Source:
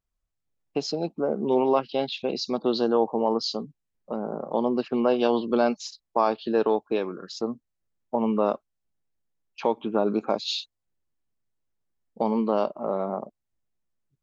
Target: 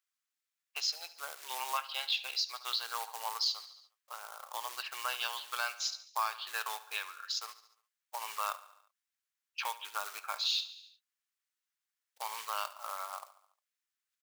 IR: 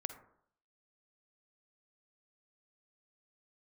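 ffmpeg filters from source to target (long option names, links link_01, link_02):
-af "acrusher=bits=6:mode=log:mix=0:aa=0.000001,highpass=frequency=1300:width=0.5412,highpass=frequency=1300:width=1.3066,aecho=1:1:71|142|213|284|355:0.141|0.0805|0.0459|0.0262|0.0149,alimiter=level_in=0.5dB:limit=-24dB:level=0:latency=1:release=309,volume=-0.5dB,volume=3.5dB"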